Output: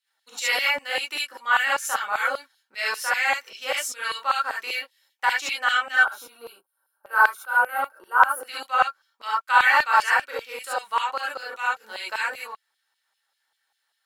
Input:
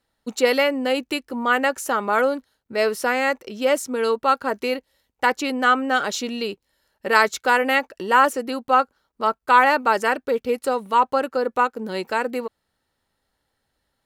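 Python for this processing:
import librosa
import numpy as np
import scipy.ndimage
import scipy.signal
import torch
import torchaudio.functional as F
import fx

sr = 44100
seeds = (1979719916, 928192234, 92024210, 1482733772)

y = fx.spec_box(x, sr, start_s=5.96, length_s=2.45, low_hz=1600.0, high_hz=8800.0, gain_db=-21)
y = fx.rev_gated(y, sr, seeds[0], gate_ms=90, shape='rising', drr_db=-6.5)
y = fx.filter_lfo_highpass(y, sr, shape='saw_down', hz=5.1, low_hz=870.0, high_hz=3000.0, q=1.2)
y = F.gain(torch.from_numpy(y), -6.0).numpy()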